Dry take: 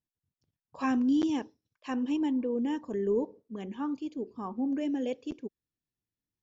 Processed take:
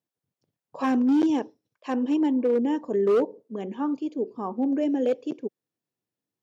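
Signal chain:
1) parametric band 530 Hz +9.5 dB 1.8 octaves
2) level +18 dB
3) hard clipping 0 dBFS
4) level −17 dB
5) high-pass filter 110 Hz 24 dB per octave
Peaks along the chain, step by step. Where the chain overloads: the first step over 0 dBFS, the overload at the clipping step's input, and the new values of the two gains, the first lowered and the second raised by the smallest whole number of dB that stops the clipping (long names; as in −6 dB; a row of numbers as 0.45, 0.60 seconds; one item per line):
−12.0, +6.0, 0.0, −17.0, −13.5 dBFS
step 2, 6.0 dB
step 2 +12 dB, step 4 −11 dB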